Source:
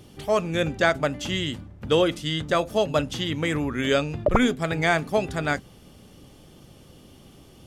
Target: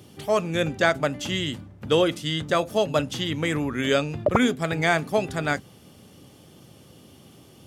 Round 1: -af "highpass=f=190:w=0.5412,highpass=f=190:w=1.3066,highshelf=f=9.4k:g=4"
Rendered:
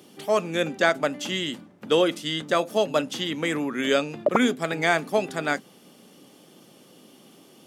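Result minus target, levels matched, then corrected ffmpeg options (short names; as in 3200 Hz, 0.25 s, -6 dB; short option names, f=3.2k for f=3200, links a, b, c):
125 Hz band -7.5 dB
-af "highpass=f=79:w=0.5412,highpass=f=79:w=1.3066,highshelf=f=9.4k:g=4"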